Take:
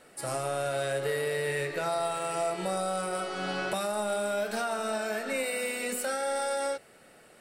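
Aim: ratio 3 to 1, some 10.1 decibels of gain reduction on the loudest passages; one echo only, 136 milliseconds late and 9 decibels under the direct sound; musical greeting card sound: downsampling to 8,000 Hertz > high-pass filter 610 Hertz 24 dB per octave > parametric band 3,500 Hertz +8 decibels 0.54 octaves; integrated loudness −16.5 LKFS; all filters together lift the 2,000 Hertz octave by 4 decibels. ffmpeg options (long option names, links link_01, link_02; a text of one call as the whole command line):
ffmpeg -i in.wav -af "equalizer=frequency=2000:width_type=o:gain=4,acompressor=threshold=-40dB:ratio=3,aecho=1:1:136:0.355,aresample=8000,aresample=44100,highpass=frequency=610:width=0.5412,highpass=frequency=610:width=1.3066,equalizer=frequency=3500:width_type=o:width=0.54:gain=8,volume=24dB" out.wav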